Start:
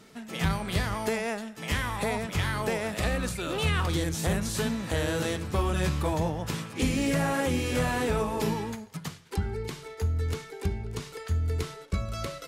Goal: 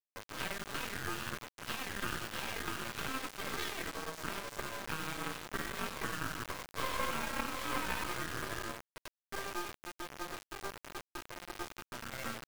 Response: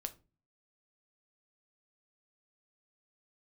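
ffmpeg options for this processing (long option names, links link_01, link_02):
-filter_complex "[0:a]afwtdn=0.0178,highpass=420,lowpass=5900,acompressor=threshold=-36dB:ratio=8,flanger=delay=7.3:depth=6.7:regen=-2:speed=0.64:shape=triangular,aeval=exprs='val(0)*sin(2*PI*790*n/s)':channel_layout=same,asettb=1/sr,asplit=3[link_01][link_02][link_03];[link_01]atrim=end=5.944[link_04];[link_02]atrim=start=5.94:end=8.16,asetpts=PTS-STARTPTS,afade=type=in:duration=0.004:curve=qsin,afade=type=out:start_time=2.216:duration=0.004:curve=qsin,equalizer=frequency=1000:width=4.2:gain=8.5[link_05];[link_03]atrim=start=8.156[link_06];[link_04][link_05]acrossfade=duration=0.004:curve1=hsin:curve2=qsin[link_07];[link_07][link_06]acrossfade=duration=0.004:curve1=qsin:curve2=hsin,acompressor=mode=upward:threshold=-49dB:ratio=2.5,aecho=1:1:96|192|288|384:0.299|0.102|0.0345|0.0117,acrusher=bits=5:dc=4:mix=0:aa=0.000001,aeval=exprs='sgn(val(0))*max(abs(val(0))-0.00224,0)':channel_layout=same,volume=11dB"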